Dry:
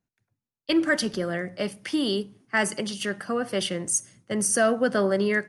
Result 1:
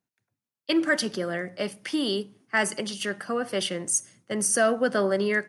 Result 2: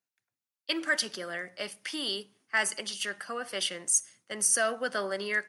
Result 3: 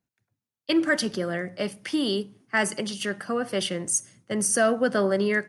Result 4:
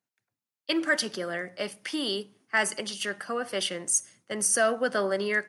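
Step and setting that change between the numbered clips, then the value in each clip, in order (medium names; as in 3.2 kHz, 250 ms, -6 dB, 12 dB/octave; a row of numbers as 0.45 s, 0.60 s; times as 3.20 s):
high-pass, cutoff frequency: 200 Hz, 1.5 kHz, 57 Hz, 590 Hz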